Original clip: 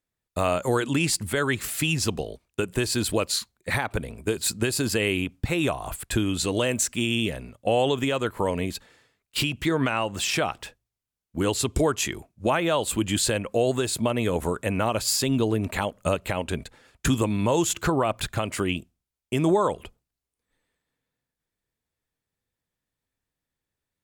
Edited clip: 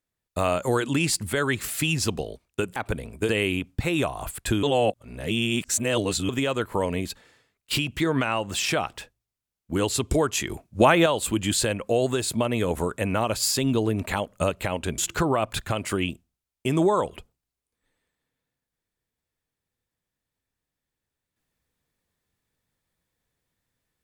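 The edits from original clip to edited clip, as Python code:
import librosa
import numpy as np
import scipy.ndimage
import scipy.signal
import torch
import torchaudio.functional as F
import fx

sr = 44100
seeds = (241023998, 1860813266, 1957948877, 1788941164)

y = fx.edit(x, sr, fx.cut(start_s=2.76, length_s=1.05),
    fx.cut(start_s=4.34, length_s=0.6),
    fx.reverse_span(start_s=6.28, length_s=1.66),
    fx.clip_gain(start_s=12.15, length_s=0.56, db=6.0),
    fx.cut(start_s=16.63, length_s=1.02), tone=tone)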